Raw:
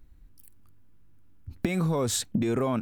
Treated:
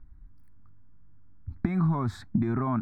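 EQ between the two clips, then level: air absorption 400 m; fixed phaser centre 1200 Hz, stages 4; +4.0 dB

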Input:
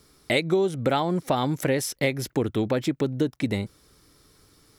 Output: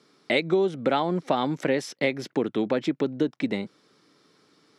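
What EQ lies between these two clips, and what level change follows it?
HPF 170 Hz 24 dB/oct; LPF 4600 Hz 12 dB/oct; 0.0 dB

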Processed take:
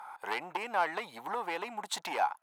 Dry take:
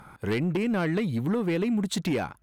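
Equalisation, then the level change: resonant high-pass 850 Hz, resonance Q 4.9; -3.5 dB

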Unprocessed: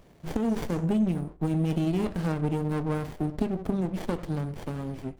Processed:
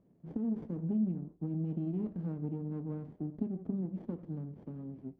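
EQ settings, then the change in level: band-pass 220 Hz, Q 1.4; -6.0 dB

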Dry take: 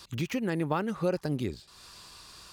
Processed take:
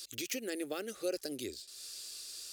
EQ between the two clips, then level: tone controls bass -1 dB, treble +13 dB; low shelf 170 Hz -12 dB; fixed phaser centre 400 Hz, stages 4; -3.5 dB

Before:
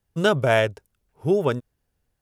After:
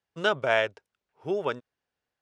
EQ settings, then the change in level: HPF 910 Hz 6 dB/oct; air absorption 120 m; 0.0 dB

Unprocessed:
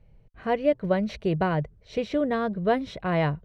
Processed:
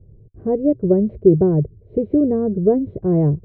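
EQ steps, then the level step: synth low-pass 380 Hz, resonance Q 4.2; bell 98 Hz +13 dB 1 oct; +3.5 dB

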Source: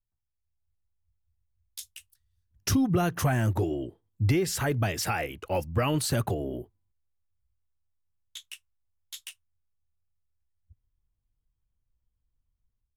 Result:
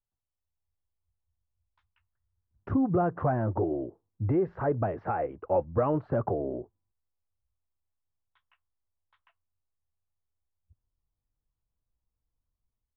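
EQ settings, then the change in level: LPF 1200 Hz 24 dB/oct; dynamic EQ 530 Hz, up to +4 dB, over -44 dBFS, Q 2.1; low shelf 200 Hz -8.5 dB; +1.5 dB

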